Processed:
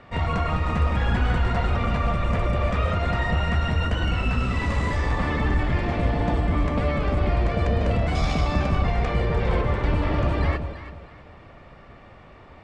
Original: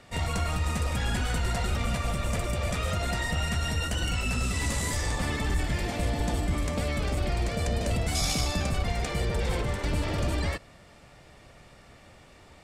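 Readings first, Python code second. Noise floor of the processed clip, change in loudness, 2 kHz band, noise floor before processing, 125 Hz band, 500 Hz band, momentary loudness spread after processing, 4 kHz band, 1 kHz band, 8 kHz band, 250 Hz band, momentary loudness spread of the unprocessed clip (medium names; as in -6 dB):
-47 dBFS, +5.0 dB, +3.5 dB, -53 dBFS, +6.0 dB, +6.0 dB, 2 LU, -2.0 dB, +7.0 dB, -15.0 dB, +6.0 dB, 2 LU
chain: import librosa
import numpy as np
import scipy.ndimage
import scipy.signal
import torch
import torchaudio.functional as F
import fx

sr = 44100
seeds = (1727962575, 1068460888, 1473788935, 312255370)

y = scipy.signal.sosfilt(scipy.signal.butter(2, 2400.0, 'lowpass', fs=sr, output='sos'), x)
y = fx.peak_eq(y, sr, hz=1100.0, db=5.0, octaves=0.32)
y = fx.echo_alternate(y, sr, ms=164, hz=810.0, feedback_pct=52, wet_db=-6.0)
y = F.gain(torch.from_numpy(y), 5.0).numpy()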